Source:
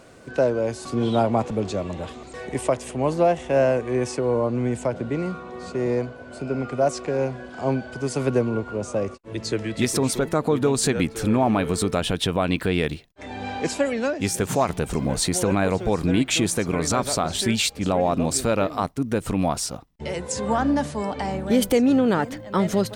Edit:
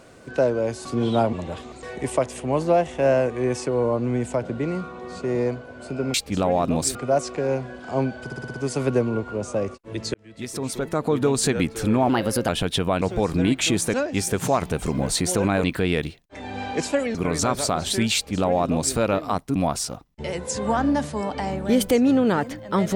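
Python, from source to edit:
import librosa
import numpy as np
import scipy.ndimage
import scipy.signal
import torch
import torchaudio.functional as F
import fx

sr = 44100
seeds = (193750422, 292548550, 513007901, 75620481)

y = fx.edit(x, sr, fx.cut(start_s=1.33, length_s=0.51),
    fx.stutter(start_s=7.94, slice_s=0.06, count=6),
    fx.fade_in_span(start_s=9.54, length_s=1.06),
    fx.speed_span(start_s=11.49, length_s=0.48, speed=1.21),
    fx.swap(start_s=12.5, length_s=1.51, other_s=15.71, other_length_s=0.92),
    fx.duplicate(start_s=17.63, length_s=0.81, to_s=6.65),
    fx.cut(start_s=19.04, length_s=0.33), tone=tone)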